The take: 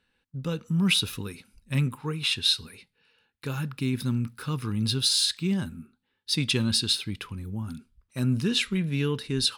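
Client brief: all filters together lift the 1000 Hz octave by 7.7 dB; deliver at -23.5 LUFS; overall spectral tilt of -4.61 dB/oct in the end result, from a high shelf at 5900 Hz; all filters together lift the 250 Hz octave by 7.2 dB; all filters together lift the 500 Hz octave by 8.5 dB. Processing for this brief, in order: bell 250 Hz +7.5 dB; bell 500 Hz +6.5 dB; bell 1000 Hz +7.5 dB; high shelf 5900 Hz +4.5 dB; gain -0.5 dB

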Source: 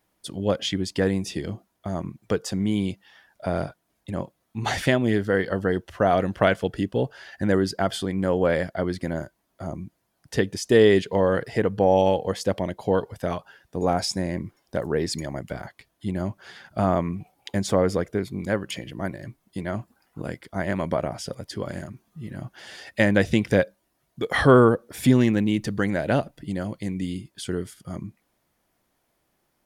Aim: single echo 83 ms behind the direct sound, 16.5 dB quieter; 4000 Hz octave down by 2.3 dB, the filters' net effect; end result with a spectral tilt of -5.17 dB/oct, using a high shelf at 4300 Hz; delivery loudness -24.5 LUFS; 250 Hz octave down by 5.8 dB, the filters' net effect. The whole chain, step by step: bell 250 Hz -8 dB; bell 4000 Hz -7 dB; high shelf 4300 Hz +6.5 dB; echo 83 ms -16.5 dB; gain +2.5 dB

